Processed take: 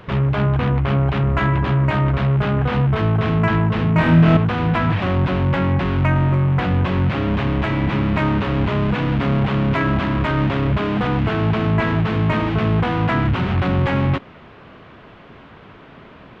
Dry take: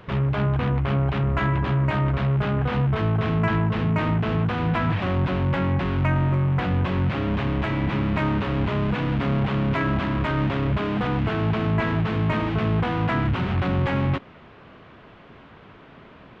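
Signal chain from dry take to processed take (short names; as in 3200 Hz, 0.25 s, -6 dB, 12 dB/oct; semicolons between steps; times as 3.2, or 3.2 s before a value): 3.93–4.37 flutter echo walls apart 4.2 m, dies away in 0.65 s; gain +4.5 dB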